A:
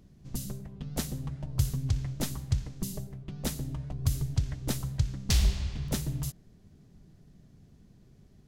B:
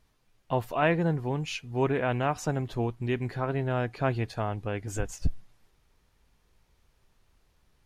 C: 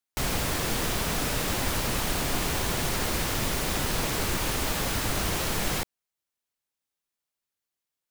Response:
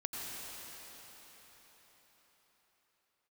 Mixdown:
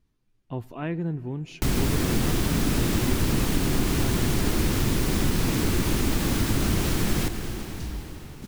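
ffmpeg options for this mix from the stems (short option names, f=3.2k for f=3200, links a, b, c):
-filter_complex "[0:a]adelay=2500,volume=-18.5dB[a];[1:a]volume=-10dB,asplit=2[b][c];[c]volume=-22dB[d];[2:a]adelay=1450,volume=-0.5dB,asplit=2[e][f];[f]volume=-7.5dB[g];[3:a]atrim=start_sample=2205[h];[d][g]amix=inputs=2:normalize=0[i];[i][h]afir=irnorm=-1:irlink=0[j];[a][b][e][j]amix=inputs=4:normalize=0,lowshelf=f=430:t=q:w=1.5:g=8,acompressor=threshold=-25dB:ratio=1.5"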